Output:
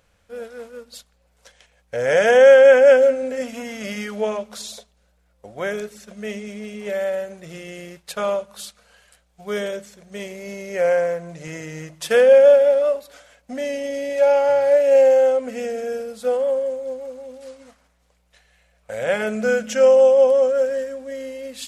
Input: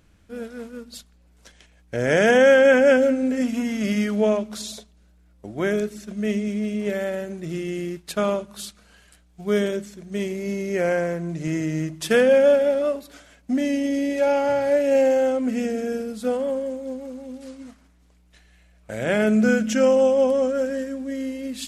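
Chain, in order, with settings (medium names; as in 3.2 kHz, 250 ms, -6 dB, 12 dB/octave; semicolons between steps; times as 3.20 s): resonant low shelf 420 Hz -7 dB, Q 3; band-stop 630 Hz, Q 12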